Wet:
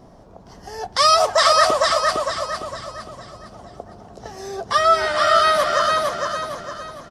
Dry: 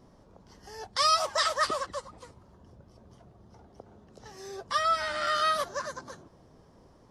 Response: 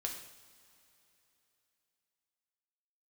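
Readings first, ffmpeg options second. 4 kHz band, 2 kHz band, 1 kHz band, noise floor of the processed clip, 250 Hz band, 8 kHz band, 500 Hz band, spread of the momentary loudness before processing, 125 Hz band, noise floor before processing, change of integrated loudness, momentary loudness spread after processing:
+10.5 dB, +11.0 dB, +11.5 dB, -46 dBFS, +12.0 dB, +10.5 dB, +15.0 dB, 19 LU, +11.5 dB, -59 dBFS, +10.5 dB, 19 LU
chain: -filter_complex "[0:a]equalizer=f=700:w=5.2:g=9,aecho=1:1:457|914|1371|1828|2285:0.708|0.283|0.113|0.0453|0.0181,asplit=2[a][b];[1:a]atrim=start_sample=2205,lowpass=2.5k[c];[b][c]afir=irnorm=-1:irlink=0,volume=-14dB[d];[a][d]amix=inputs=2:normalize=0,volume=8.5dB"

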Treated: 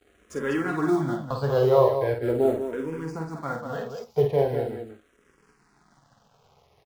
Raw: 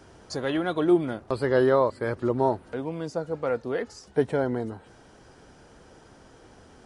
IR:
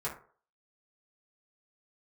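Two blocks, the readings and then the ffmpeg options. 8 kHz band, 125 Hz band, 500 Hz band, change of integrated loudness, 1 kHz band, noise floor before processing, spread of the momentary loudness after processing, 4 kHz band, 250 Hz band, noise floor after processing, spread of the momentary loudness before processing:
n/a, +4.0 dB, +1.5 dB, +1.0 dB, 0.0 dB, -53 dBFS, 14 LU, -3.0 dB, -1.0 dB, -64 dBFS, 10 LU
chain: -filter_complex "[0:a]acrusher=bits=7:mode=log:mix=0:aa=0.000001,highshelf=f=6.6k:g=-5,aeval=exprs='sgn(val(0))*max(abs(val(0))-0.00316,0)':c=same,aecho=1:1:49.56|195.3:0.562|0.447,asplit=2[a][b];[1:a]atrim=start_sample=2205,atrim=end_sample=3969[c];[b][c]afir=irnorm=-1:irlink=0,volume=-8dB[d];[a][d]amix=inputs=2:normalize=0,asplit=2[e][f];[f]afreqshift=-0.41[g];[e][g]amix=inputs=2:normalize=1"

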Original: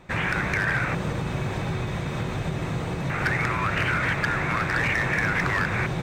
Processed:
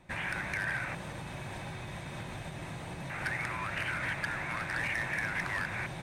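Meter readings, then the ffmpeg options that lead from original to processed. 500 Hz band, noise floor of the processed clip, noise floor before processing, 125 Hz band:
-12.5 dB, -43 dBFS, -30 dBFS, -14.0 dB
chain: -filter_complex "[0:a]superequalizer=7b=0.562:10b=0.631:16b=2.51,acrossover=split=530[a][b];[a]alimiter=level_in=3.5dB:limit=-24dB:level=0:latency=1:release=291,volume=-3.5dB[c];[c][b]amix=inputs=2:normalize=0,volume=-8.5dB"

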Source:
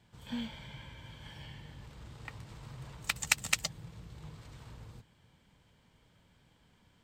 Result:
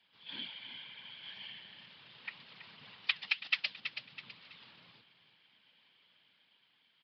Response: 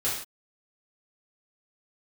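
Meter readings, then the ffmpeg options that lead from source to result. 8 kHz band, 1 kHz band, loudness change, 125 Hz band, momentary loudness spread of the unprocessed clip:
under -30 dB, -8.0 dB, -1.5 dB, -21.0 dB, 20 LU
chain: -af "afftfilt=real='hypot(re,im)*cos(2*PI*random(0))':imag='hypot(re,im)*sin(2*PI*random(1))':win_size=512:overlap=0.75,flanger=delay=2:depth=8.6:regen=-81:speed=2:shape=triangular,dynaudnorm=f=150:g=11:m=3dB,lowshelf=f=400:g=-12,aecho=1:1:327|654|981:0.251|0.0829|0.0274,alimiter=level_in=2.5dB:limit=-24dB:level=0:latency=1:release=457,volume=-2.5dB,highpass=f=120:w=0.5412,highpass=f=120:w=1.3066,aresample=11025,aresample=44100,equalizer=f=3k:t=o:w=1.6:g=14.5,volume=1dB"

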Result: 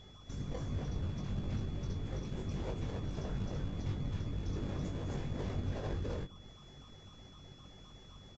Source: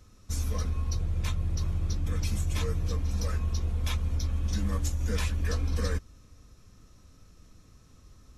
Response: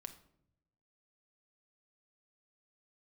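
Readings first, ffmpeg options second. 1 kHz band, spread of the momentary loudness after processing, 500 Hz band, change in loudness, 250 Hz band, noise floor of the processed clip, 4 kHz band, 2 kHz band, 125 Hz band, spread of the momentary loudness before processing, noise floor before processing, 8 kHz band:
-6.0 dB, 16 LU, -3.0 dB, -8.5 dB, -2.0 dB, -56 dBFS, -9.0 dB, -10.5 dB, -8.5 dB, 2 LU, -57 dBFS, -18.0 dB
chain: -filter_complex "[0:a]highpass=f=130:p=1,equalizer=f=1.9k:w=1.5:g=5.5,aecho=1:1:34.99|262.4:0.251|0.891,acrossover=split=770[a][b];[b]acompressor=threshold=-53dB:ratio=6[c];[a][c]amix=inputs=2:normalize=0,aeval=exprs='0.0335*(abs(mod(val(0)/0.0335+3,4)-2)-1)':c=same,aeval=exprs='val(0)+0.00251*(sin(2*PI*50*n/s)+sin(2*PI*2*50*n/s)/2+sin(2*PI*3*50*n/s)/3+sin(2*PI*4*50*n/s)/4+sin(2*PI*5*50*n/s)/5)':c=same,afftfilt=real='hypot(re,im)*cos(2*PI*random(0))':imag='hypot(re,im)*sin(2*PI*random(1))':win_size=512:overlap=0.75,aeval=exprs='val(0)+0.00178*sin(2*PI*3400*n/s)':c=same,asplit=2[d][e];[e]acrusher=samples=27:mix=1:aa=0.000001:lfo=1:lforange=16.2:lforate=3.9,volume=-5.5dB[f];[d][f]amix=inputs=2:normalize=0,asplit=2[g][h];[h]adelay=21,volume=-5dB[i];[g][i]amix=inputs=2:normalize=0,aresample=16000,aresample=44100,volume=-1.5dB"

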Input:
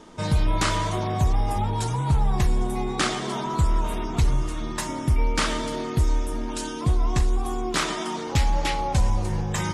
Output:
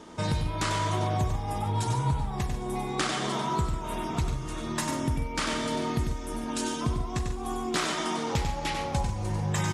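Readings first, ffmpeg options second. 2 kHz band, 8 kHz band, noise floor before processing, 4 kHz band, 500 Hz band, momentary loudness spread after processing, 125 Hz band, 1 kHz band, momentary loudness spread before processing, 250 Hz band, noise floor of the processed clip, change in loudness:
-3.5 dB, -3.0 dB, -31 dBFS, -3.0 dB, -3.0 dB, 5 LU, -5.0 dB, -3.0 dB, 5 LU, -2.5 dB, -35 dBFS, -4.5 dB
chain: -af "acompressor=threshold=-25dB:ratio=6,highpass=43,aecho=1:1:96.21|142.9:0.501|0.251"

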